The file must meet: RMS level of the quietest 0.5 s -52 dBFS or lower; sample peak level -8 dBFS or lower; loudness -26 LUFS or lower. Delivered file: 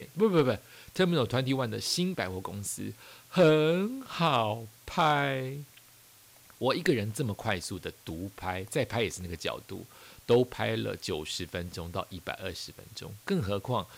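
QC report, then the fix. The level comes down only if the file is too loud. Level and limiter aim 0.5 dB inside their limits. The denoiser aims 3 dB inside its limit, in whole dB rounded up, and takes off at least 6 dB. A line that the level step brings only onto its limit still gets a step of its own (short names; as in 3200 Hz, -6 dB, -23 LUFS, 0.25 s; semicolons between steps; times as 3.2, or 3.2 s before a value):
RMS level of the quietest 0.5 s -57 dBFS: OK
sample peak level -14.0 dBFS: OK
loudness -30.5 LUFS: OK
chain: none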